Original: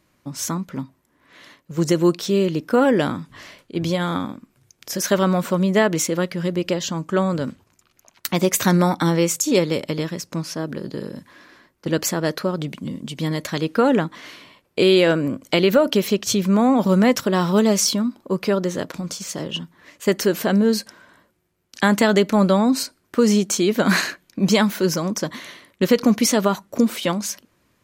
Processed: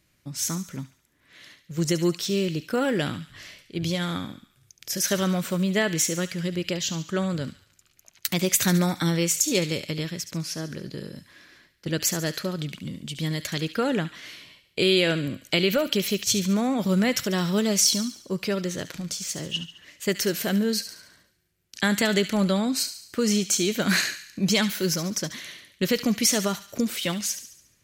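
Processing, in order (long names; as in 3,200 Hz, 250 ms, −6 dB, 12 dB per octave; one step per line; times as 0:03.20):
octave-band graphic EQ 250/500/1,000 Hz −7/−5/−11 dB
delay with a high-pass on its return 71 ms, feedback 52%, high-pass 1,700 Hz, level −10.5 dB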